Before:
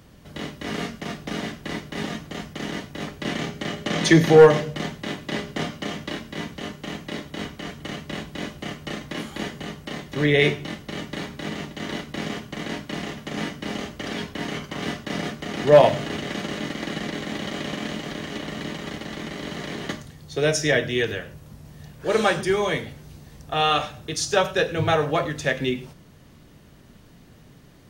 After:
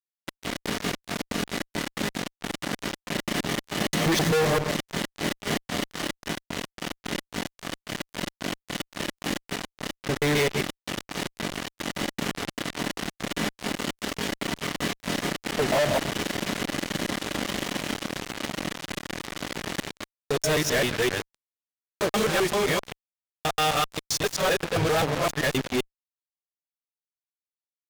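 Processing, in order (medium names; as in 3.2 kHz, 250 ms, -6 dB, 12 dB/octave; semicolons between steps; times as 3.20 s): time reversed locally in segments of 131 ms; Chebyshev shaper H 7 -19 dB, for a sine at -4.5 dBFS; fuzz box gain 43 dB, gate -41 dBFS; trim -7 dB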